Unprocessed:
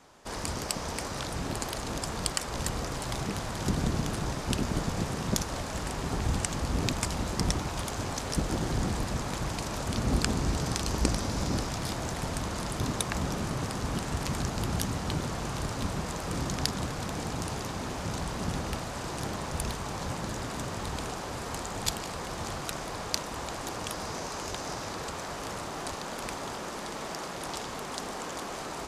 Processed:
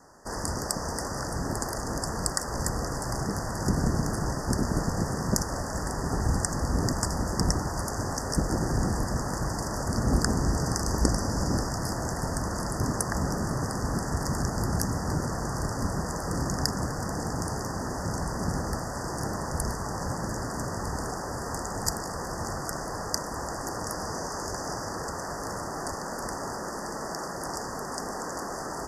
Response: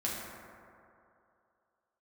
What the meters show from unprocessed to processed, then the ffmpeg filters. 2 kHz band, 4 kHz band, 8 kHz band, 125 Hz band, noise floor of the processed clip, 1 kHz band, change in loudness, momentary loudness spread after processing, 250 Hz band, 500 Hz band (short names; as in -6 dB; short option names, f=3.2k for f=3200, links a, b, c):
+1.0 dB, -1.5 dB, +3.0 dB, +3.0 dB, -35 dBFS, +3.0 dB, +2.5 dB, 7 LU, +3.0 dB, +3.0 dB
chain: -af "asuperstop=centerf=3000:order=20:qfactor=1.1,volume=3dB"